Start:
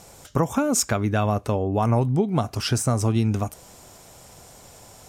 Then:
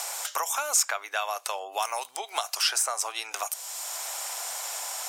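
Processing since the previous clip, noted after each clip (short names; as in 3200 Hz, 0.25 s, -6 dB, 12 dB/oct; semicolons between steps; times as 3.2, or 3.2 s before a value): inverse Chebyshev high-pass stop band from 210 Hz, stop band 60 dB; high shelf 2500 Hz +11.5 dB; three-band squash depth 70%; gain -2.5 dB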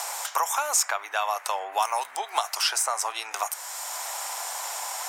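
bell 930 Hz +7 dB 0.7 oct; band noise 660–2200 Hz -47 dBFS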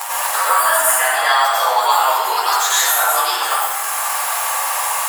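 inharmonic rescaling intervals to 110%; plate-style reverb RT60 1.2 s, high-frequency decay 0.85×, pre-delay 80 ms, DRR -9.5 dB; three-band squash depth 40%; gain +6 dB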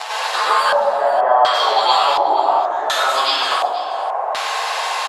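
LFO low-pass square 0.69 Hz 800–4200 Hz; frequency shift -74 Hz; echo 0.48 s -15.5 dB; gain -1 dB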